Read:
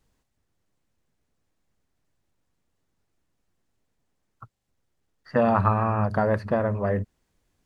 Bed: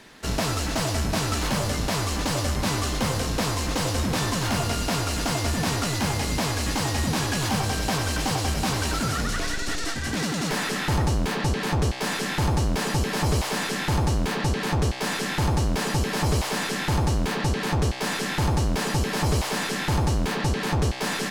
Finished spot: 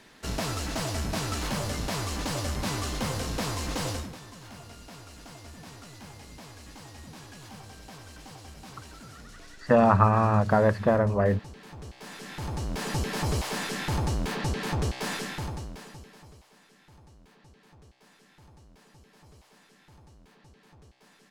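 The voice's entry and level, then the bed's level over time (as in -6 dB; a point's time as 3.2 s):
4.35 s, +1.5 dB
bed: 3.92 s -5.5 dB
4.19 s -21 dB
11.72 s -21 dB
12.95 s -5 dB
15.15 s -5 dB
16.46 s -32 dB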